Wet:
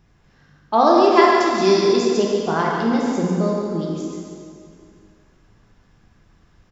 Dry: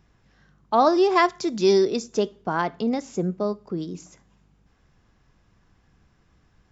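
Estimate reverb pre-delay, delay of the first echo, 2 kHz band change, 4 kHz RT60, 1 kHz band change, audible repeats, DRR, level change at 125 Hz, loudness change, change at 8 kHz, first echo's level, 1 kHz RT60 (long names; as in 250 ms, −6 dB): 5 ms, 143 ms, +5.5 dB, 2.2 s, +6.0 dB, 1, −3.0 dB, +6.5 dB, +5.0 dB, can't be measured, −7.0 dB, 2.4 s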